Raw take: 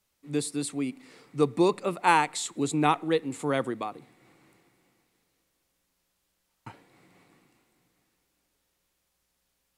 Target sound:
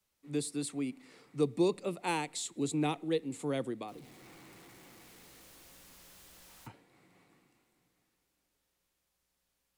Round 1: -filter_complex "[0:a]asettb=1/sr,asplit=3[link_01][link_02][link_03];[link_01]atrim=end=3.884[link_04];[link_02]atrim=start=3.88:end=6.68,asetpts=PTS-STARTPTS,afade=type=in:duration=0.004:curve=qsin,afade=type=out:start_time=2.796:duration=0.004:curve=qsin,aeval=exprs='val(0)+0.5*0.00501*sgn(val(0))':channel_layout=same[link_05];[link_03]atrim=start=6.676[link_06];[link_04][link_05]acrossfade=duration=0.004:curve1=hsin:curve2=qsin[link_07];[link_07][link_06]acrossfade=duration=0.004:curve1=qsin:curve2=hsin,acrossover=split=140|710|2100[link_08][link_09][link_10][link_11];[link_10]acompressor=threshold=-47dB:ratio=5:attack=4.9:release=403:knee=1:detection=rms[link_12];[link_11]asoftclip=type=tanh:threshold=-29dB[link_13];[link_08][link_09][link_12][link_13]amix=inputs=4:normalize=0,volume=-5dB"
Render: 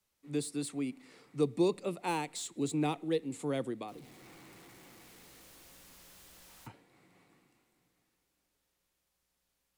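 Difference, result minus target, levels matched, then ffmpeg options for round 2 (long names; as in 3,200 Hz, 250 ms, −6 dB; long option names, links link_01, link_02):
soft clipping: distortion +13 dB
-filter_complex "[0:a]asettb=1/sr,asplit=3[link_01][link_02][link_03];[link_01]atrim=end=3.884[link_04];[link_02]atrim=start=3.88:end=6.68,asetpts=PTS-STARTPTS,afade=type=in:duration=0.004:curve=qsin,afade=type=out:start_time=2.796:duration=0.004:curve=qsin,aeval=exprs='val(0)+0.5*0.00501*sgn(val(0))':channel_layout=same[link_05];[link_03]atrim=start=6.676[link_06];[link_04][link_05]acrossfade=duration=0.004:curve1=hsin:curve2=qsin[link_07];[link_07][link_06]acrossfade=duration=0.004:curve1=qsin:curve2=hsin,acrossover=split=140|710|2100[link_08][link_09][link_10][link_11];[link_10]acompressor=threshold=-47dB:ratio=5:attack=4.9:release=403:knee=1:detection=rms[link_12];[link_11]asoftclip=type=tanh:threshold=-19dB[link_13];[link_08][link_09][link_12][link_13]amix=inputs=4:normalize=0,volume=-5dB"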